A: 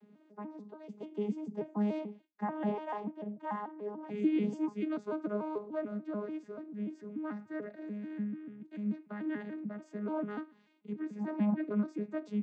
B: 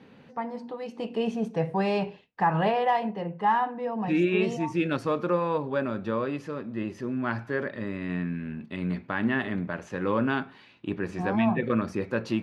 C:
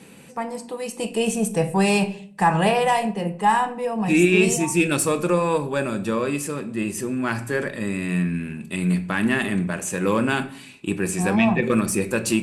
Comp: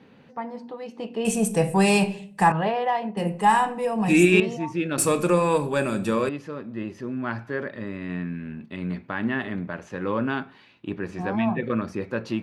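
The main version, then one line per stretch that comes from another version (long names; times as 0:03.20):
B
0:01.25–0:02.52: punch in from C
0:03.17–0:04.40: punch in from C
0:04.98–0:06.29: punch in from C
not used: A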